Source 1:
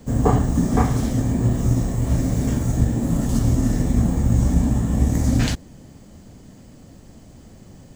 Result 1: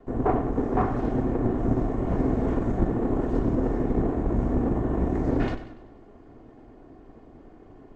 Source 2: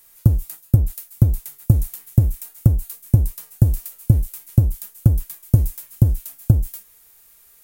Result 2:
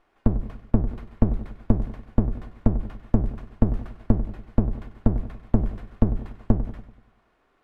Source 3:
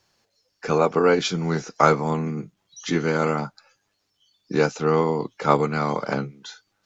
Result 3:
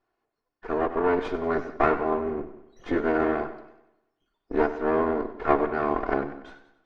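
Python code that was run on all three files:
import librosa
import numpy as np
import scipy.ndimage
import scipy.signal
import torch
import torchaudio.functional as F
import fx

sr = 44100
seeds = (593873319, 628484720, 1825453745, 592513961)

y = fx.lower_of_two(x, sr, delay_ms=2.8)
y = scipy.signal.sosfilt(scipy.signal.butter(2, 1400.0, 'lowpass', fs=sr, output='sos'), y)
y = fx.peak_eq(y, sr, hz=75.0, db=-10.0, octaves=1.6)
y = fx.rider(y, sr, range_db=10, speed_s=0.5)
y = y + 10.0 ** (-21.5 / 20.0) * np.pad(y, (int(171 * sr / 1000.0), 0))[:len(y)]
y = fx.echo_warbled(y, sr, ms=96, feedback_pct=48, rate_hz=2.8, cents=65, wet_db=-13)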